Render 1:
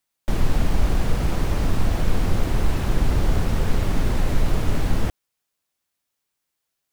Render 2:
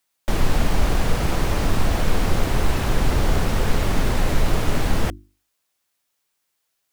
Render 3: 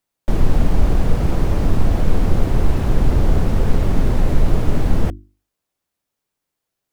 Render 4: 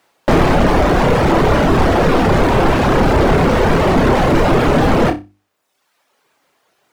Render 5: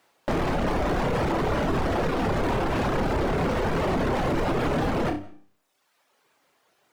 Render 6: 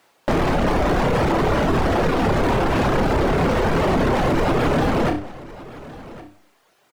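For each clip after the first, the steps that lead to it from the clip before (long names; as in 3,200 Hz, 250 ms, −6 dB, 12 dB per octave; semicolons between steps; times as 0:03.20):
low-shelf EQ 330 Hz −5 dB; mains-hum notches 50/100/150/200/250/300/350 Hz; level +5.5 dB
tilt shelving filter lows +6.5 dB, about 760 Hz; level −1.5 dB
mid-hump overdrive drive 38 dB, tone 1,300 Hz, clips at −1 dBFS; reverb reduction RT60 0.98 s; flutter between parallel walls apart 5.2 metres, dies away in 0.23 s; level −1 dB
brickwall limiter −13.5 dBFS, peak gain reduction 11 dB; on a send at −21.5 dB: convolution reverb RT60 0.45 s, pre-delay 120 ms; on the sum: level −5 dB
single-tap delay 1,112 ms −18.5 dB; level +6 dB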